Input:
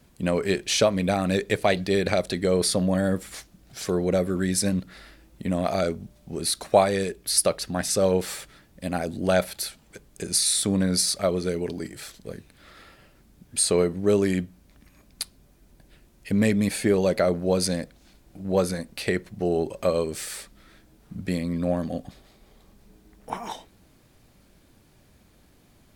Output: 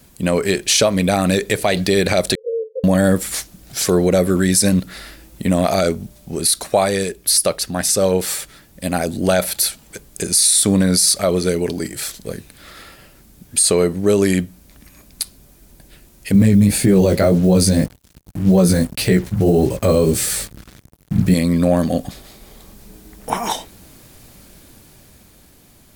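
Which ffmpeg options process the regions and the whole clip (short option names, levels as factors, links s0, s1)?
-filter_complex "[0:a]asettb=1/sr,asplit=3[s0][s1][s2];[s0]atrim=end=2.354[s3];[s1]atrim=start=2.35:end=2.84,asetpts=PTS-STARTPTS,afade=t=in:d=0.004:c=qsin,afade=t=out:st=0.486:d=0.004:c=qsin,acompressor=threshold=0.0631:ratio=5:attack=3.2:release=140:knee=1:detection=peak,asuperpass=centerf=480:order=12:qfactor=4.9[s4];[s2]atrim=start=2.836[s5];[s3][s4]acrossfade=d=0.004:c1=hsin:c2=qsin[s6];[s6][s5]acrossfade=d=0.004:c1=qsin:c2=hsin,asettb=1/sr,asplit=3[s7][s8][s9];[s7]atrim=end=16.344[s10];[s8]atrim=start=16.34:end=21.34,asetpts=PTS-STARTPTS,afade=t=in:d=0.004:c=qsin,afade=t=out:st=4.996:d=0.004:c=qsin,flanger=delay=15.5:depth=4.7:speed=1.8,acrusher=bits=7:mix=0:aa=0.5,equalizer=f=88:w=0.33:g=15[s11];[s9]atrim=start=21.336[s12];[s10][s11]acrossfade=d=0.004:c1=hsin:c2=qsin[s13];[s13][s12]acrossfade=d=0.004:c1=qsin:c2=hsin,highshelf=f=5900:g=10.5,dynaudnorm=f=230:g=11:m=1.78,alimiter=limit=0.266:level=0:latency=1:release=51,volume=2.24"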